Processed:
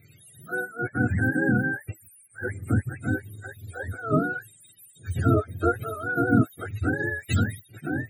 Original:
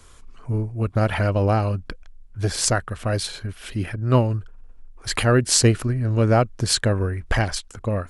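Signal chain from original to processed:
frequency axis turned over on the octave scale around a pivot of 400 Hz
time-frequency box erased 0:00.60–0:03.03, 2,800–7,200 Hz
phaser with its sweep stopped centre 2,400 Hz, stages 4

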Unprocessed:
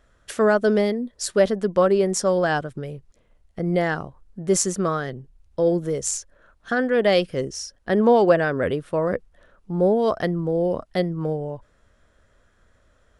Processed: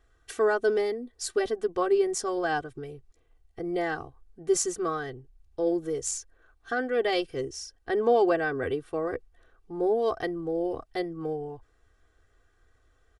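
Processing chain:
comb filter 2.6 ms, depth 100%
level −9 dB

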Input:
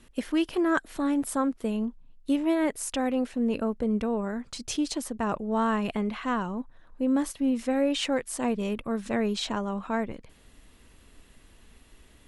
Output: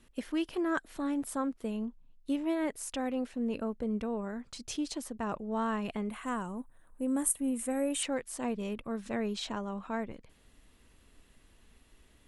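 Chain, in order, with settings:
0:06.10–0:08.03: high shelf with overshoot 6,800 Hz +12 dB, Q 3
level −6.5 dB

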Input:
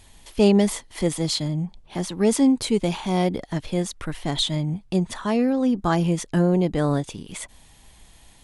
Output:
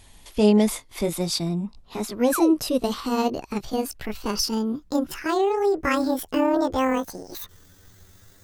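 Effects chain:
pitch glide at a constant tempo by +12 semitones starting unshifted
sound drawn into the spectrogram fall, 0:02.32–0:02.54, 270–1,800 Hz −28 dBFS

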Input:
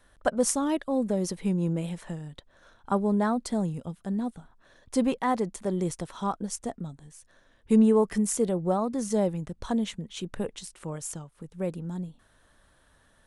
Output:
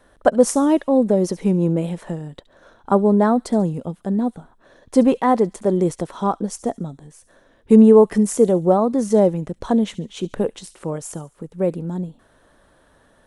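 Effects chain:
parametric band 430 Hz +10 dB 2.9 octaves
delay with a high-pass on its return 70 ms, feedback 44%, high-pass 2,900 Hz, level −16 dB
level +2 dB

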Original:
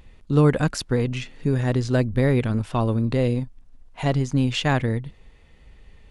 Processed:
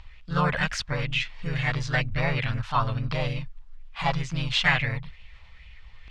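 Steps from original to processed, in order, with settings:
guitar amp tone stack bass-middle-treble 10-0-10
reversed playback
upward compression, threshold −50 dBFS
reversed playback
in parallel at −5 dB: soft clipping −23.5 dBFS, distortion −19 dB
on the sum: pitch-shifted copies added +3 semitones −1 dB
high-frequency loss of the air 150 metres
auto-filter bell 2.2 Hz 890–2,800 Hz +9 dB
level +2 dB

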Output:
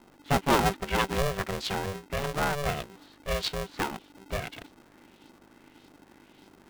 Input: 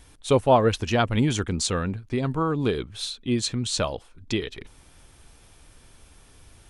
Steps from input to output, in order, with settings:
hum with harmonics 50 Hz, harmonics 10, −55 dBFS −4 dB per octave
auto-filter low-pass saw up 1.7 Hz 790–4,400 Hz
ring modulator with a square carrier 290 Hz
level −6 dB

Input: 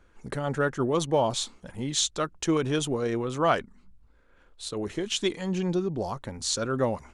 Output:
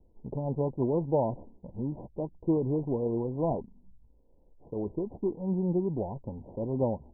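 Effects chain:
running median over 41 samples
Chebyshev low-pass filter 1,000 Hz, order 8

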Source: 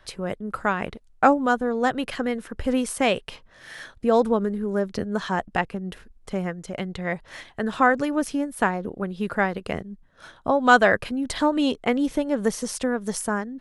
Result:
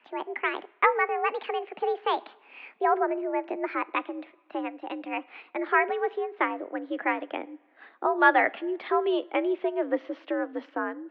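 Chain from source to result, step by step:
gliding playback speed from 151% → 94%
coupled-rooms reverb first 0.45 s, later 2.2 s, from −17 dB, DRR 17.5 dB
single-sideband voice off tune +74 Hz 190–3,000 Hz
level −4 dB

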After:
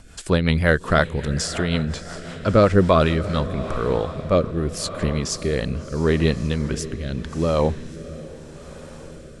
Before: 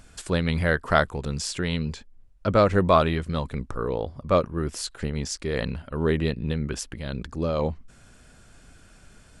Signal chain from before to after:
feedback delay with all-pass diffusion 651 ms, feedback 59%, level −14 dB
rotating-speaker cabinet horn 5.5 Hz, later 0.8 Hz, at 0:02.83
level +6.5 dB

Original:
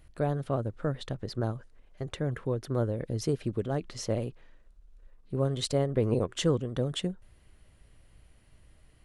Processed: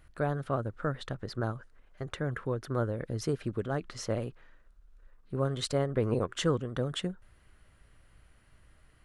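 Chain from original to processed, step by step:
parametric band 1,400 Hz +9 dB 0.95 octaves
level −2.5 dB

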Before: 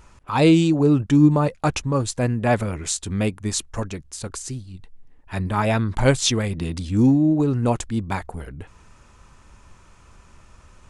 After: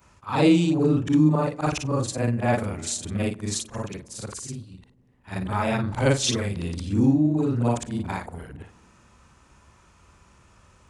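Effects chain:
every overlapping window played backwards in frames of 118 ms
high-pass filter 61 Hz
on a send: feedback echo with a low-pass in the loop 98 ms, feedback 79%, low-pass 1,400 Hz, level −22 dB

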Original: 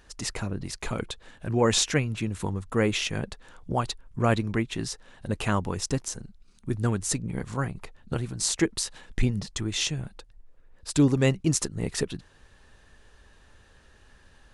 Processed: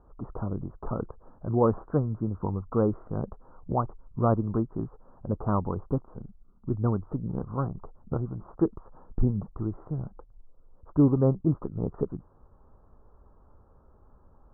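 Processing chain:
Butterworth low-pass 1,300 Hz 72 dB per octave

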